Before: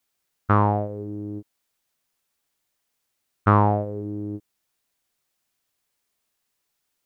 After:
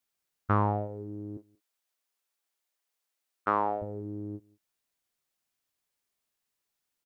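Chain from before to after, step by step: 1.37–3.82 HPF 380 Hz 12 dB/oct; outdoor echo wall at 31 m, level -26 dB; gain -7 dB

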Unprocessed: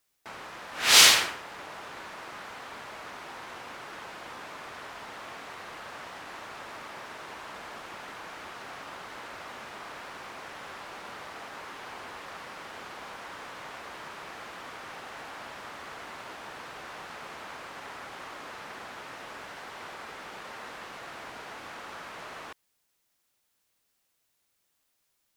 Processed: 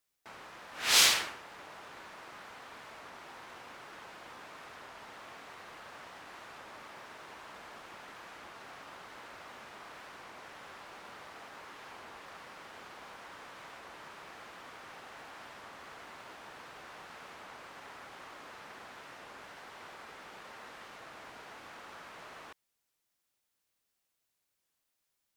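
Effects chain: short-mantissa float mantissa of 4-bit; record warp 33 1/3 rpm, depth 100 cents; gain -7 dB

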